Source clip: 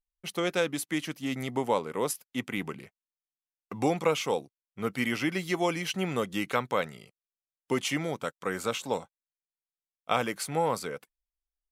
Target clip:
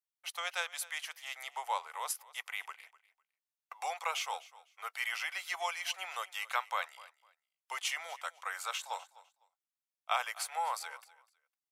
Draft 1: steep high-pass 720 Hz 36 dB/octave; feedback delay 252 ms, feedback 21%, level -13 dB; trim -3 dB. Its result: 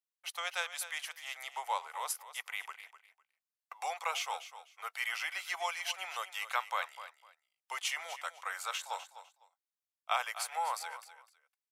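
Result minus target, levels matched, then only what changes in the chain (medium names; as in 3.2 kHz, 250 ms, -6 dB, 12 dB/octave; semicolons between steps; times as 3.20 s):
echo-to-direct +6.5 dB
change: feedback delay 252 ms, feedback 21%, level -19.5 dB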